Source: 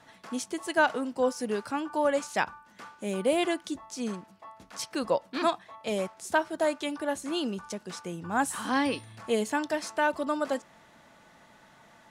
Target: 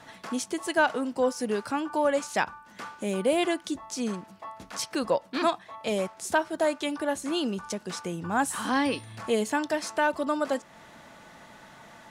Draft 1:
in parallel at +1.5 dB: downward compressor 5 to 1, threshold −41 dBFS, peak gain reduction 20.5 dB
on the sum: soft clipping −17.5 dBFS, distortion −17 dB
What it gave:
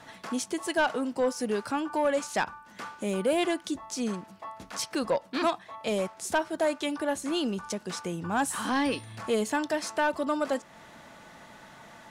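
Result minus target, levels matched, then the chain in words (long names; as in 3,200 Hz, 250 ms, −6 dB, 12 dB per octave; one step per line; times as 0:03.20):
soft clipping: distortion +15 dB
in parallel at +1.5 dB: downward compressor 5 to 1, threshold −41 dBFS, peak gain reduction 20.5 dB
on the sum: soft clipping −8 dBFS, distortion −32 dB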